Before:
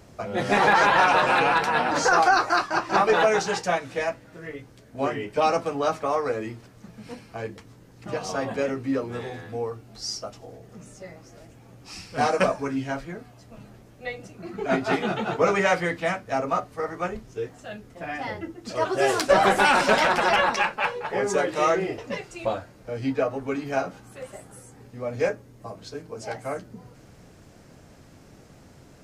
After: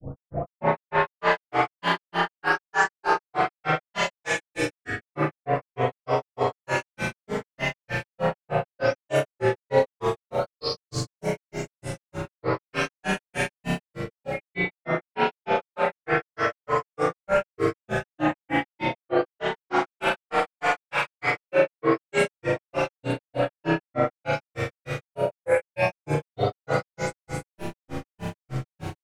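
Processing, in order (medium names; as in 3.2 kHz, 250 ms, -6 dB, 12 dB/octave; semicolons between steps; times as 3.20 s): delay that grows with frequency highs late, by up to 874 ms; in parallel at -5 dB: saturation -20 dBFS, distortion -13 dB; on the sum: flutter echo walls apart 8.1 m, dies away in 1.1 s; reverse; compression 12:1, threshold -32 dBFS, peak gain reduction 21 dB; reverse; spring tank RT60 2.4 s, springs 34 ms, chirp 50 ms, DRR -8.5 dB; granulator 164 ms, grains 3.3 per s, pitch spread up and down by 3 st; trim +7.5 dB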